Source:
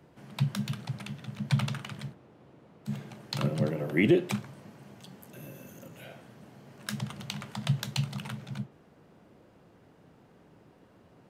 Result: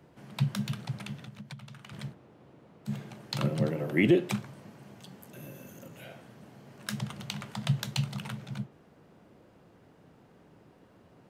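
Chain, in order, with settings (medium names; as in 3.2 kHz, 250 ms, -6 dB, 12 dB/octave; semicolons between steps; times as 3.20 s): 1.19–1.93 s: compression 10:1, threshold -42 dBFS, peak gain reduction 21.5 dB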